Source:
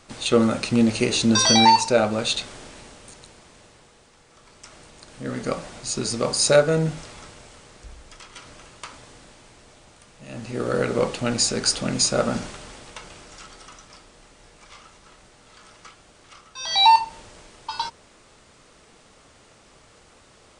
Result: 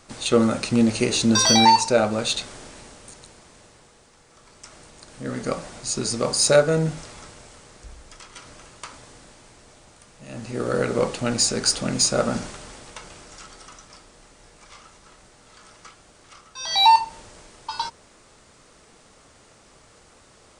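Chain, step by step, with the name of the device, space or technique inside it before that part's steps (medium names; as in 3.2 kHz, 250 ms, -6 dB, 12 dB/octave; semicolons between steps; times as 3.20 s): exciter from parts (in parallel at -9 dB: high-pass 2.4 kHz 12 dB/octave + saturation -15.5 dBFS, distortion -16 dB + high-pass 2.7 kHz 12 dB/octave)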